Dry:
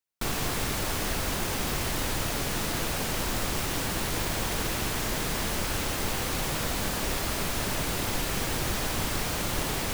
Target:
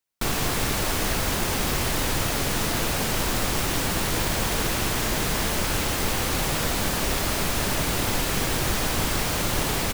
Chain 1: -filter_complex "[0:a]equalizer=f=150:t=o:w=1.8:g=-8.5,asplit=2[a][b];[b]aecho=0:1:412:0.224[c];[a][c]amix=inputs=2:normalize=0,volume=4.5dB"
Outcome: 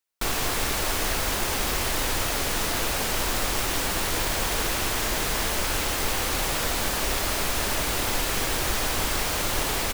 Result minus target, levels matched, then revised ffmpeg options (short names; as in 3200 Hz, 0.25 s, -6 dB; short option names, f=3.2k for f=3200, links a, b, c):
125 Hz band -5.0 dB
-filter_complex "[0:a]asplit=2[a][b];[b]aecho=0:1:412:0.224[c];[a][c]amix=inputs=2:normalize=0,volume=4.5dB"